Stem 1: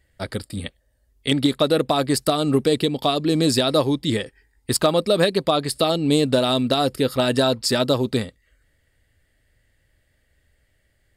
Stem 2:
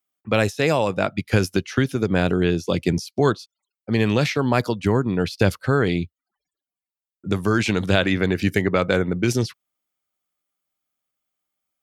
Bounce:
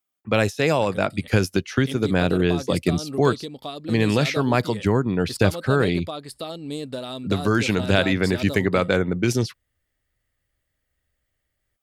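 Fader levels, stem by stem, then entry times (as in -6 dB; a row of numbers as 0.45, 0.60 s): -13.0, -0.5 dB; 0.60, 0.00 s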